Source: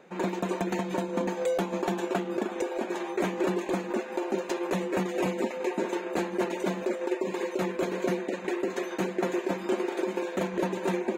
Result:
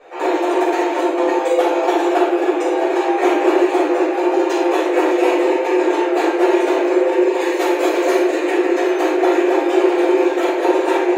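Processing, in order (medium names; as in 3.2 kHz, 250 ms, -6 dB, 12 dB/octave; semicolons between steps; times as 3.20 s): treble shelf 5.1 kHz -5 dB, from 7.39 s +4.5 dB, from 8.49 s -4 dB; brick-wall FIR high-pass 290 Hz; reverberation RT60 0.90 s, pre-delay 4 ms, DRR -11.5 dB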